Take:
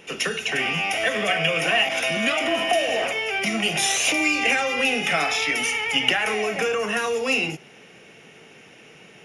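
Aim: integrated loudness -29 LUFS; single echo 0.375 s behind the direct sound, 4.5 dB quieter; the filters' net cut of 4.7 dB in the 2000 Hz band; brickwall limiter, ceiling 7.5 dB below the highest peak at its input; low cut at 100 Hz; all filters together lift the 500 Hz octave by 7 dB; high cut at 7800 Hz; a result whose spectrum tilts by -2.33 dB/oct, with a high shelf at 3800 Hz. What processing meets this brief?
HPF 100 Hz; LPF 7800 Hz; bell 500 Hz +9 dB; bell 2000 Hz -9 dB; high shelf 3800 Hz +7 dB; limiter -13 dBFS; echo 0.375 s -4.5 dB; gain -8.5 dB

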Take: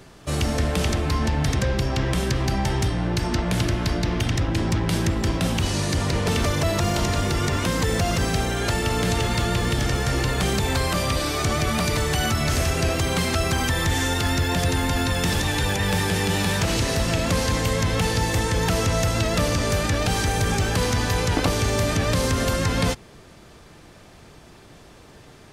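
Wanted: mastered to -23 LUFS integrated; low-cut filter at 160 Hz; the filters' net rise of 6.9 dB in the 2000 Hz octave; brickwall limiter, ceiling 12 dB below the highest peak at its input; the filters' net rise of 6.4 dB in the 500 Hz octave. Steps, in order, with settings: HPF 160 Hz; bell 500 Hz +7.5 dB; bell 2000 Hz +8 dB; gain +1 dB; limiter -14.5 dBFS

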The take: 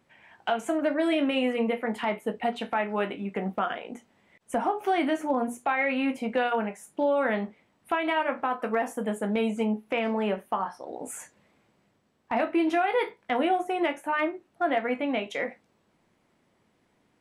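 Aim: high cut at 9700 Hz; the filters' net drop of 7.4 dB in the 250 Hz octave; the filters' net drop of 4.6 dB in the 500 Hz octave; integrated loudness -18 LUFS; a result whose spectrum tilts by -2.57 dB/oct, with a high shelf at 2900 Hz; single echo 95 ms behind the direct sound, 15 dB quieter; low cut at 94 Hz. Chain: HPF 94 Hz; LPF 9700 Hz; bell 250 Hz -8 dB; bell 500 Hz -4.5 dB; high shelf 2900 Hz +8.5 dB; echo 95 ms -15 dB; gain +12 dB

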